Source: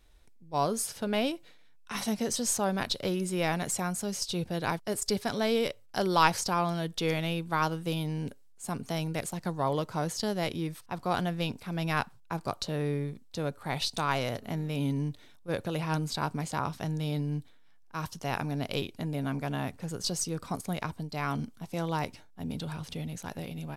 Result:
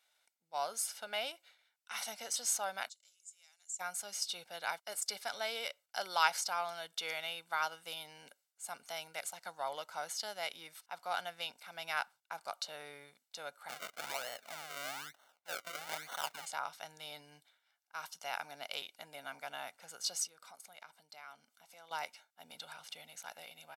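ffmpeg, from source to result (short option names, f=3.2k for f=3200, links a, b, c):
-filter_complex "[0:a]asplit=3[a][b][c];[a]afade=t=out:st=2.88:d=0.02[d];[b]bandpass=f=7.2k:t=q:w=9.2,afade=t=in:st=2.88:d=0.02,afade=t=out:st=3.79:d=0.02[e];[c]afade=t=in:st=3.79:d=0.02[f];[d][e][f]amix=inputs=3:normalize=0,asplit=3[g][h][i];[g]afade=t=out:st=13.68:d=0.02[j];[h]acrusher=samples=35:mix=1:aa=0.000001:lfo=1:lforange=35:lforate=1.1,afade=t=in:st=13.68:d=0.02,afade=t=out:st=16.45:d=0.02[k];[i]afade=t=in:st=16.45:d=0.02[l];[j][k][l]amix=inputs=3:normalize=0,asettb=1/sr,asplit=3[m][n][o];[m]atrim=end=20.264[p];[n]atrim=start=20.26:end=21.91,asetpts=PTS-STARTPTS,afade=t=in:d=0.004:c=qsin,afade=t=out:st=1.646:d=0.004:c=qsin,acompressor=threshold=-44dB:ratio=3:attack=3.2:release=140:knee=1:detection=peak[q];[o]atrim=start=21.906[r];[p][q]acrossfade=d=0.004:c1=hsin:c2=qsin[s];[s][r]acrossfade=d=0.004:c1=qsin:c2=hsin,highpass=930,aecho=1:1:1.4:0.49,volume=-4.5dB"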